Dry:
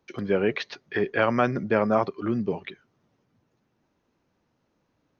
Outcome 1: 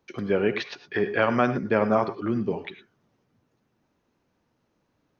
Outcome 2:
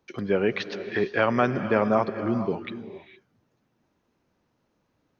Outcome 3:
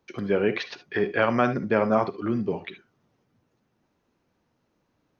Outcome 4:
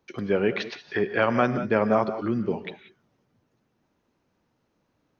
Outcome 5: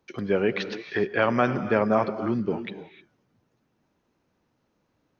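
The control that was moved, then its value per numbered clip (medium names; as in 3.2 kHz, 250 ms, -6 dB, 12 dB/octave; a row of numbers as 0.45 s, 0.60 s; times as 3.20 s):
gated-style reverb, gate: 130 ms, 490 ms, 90 ms, 210 ms, 330 ms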